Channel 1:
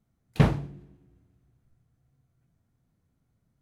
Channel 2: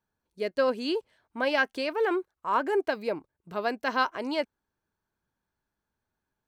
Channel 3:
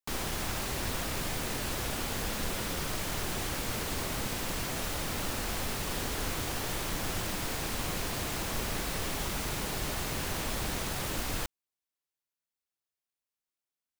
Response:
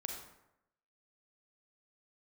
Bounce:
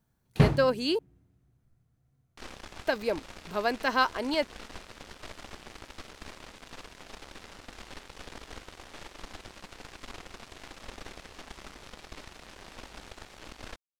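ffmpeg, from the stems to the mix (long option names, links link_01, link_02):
-filter_complex "[0:a]volume=-1dB[link_01];[1:a]highshelf=frequency=5200:gain=8.5,volume=0.5dB,asplit=3[link_02][link_03][link_04];[link_02]atrim=end=0.99,asetpts=PTS-STARTPTS,afade=type=out:start_time=0.986:duration=0.004:curve=hsin[link_05];[link_03]atrim=start=0.99:end=2.86,asetpts=PTS-STARTPTS,volume=0[link_06];[link_04]atrim=start=2.86,asetpts=PTS-STARTPTS,afade=type=in:duration=0.004:curve=hsin[link_07];[link_05][link_06][link_07]concat=n=3:v=0:a=1[link_08];[2:a]lowpass=4700,equalizer=frequency=130:width=1.8:gain=-10.5,aeval=exprs='0.0841*(cos(1*acos(clip(val(0)/0.0841,-1,1)))-cos(1*PI/2))+0.0133*(cos(4*acos(clip(val(0)/0.0841,-1,1)))-cos(4*PI/2))+0.0133*(cos(7*acos(clip(val(0)/0.0841,-1,1)))-cos(7*PI/2))':channel_layout=same,adelay=2300,volume=-9dB[link_09];[link_01][link_08][link_09]amix=inputs=3:normalize=0"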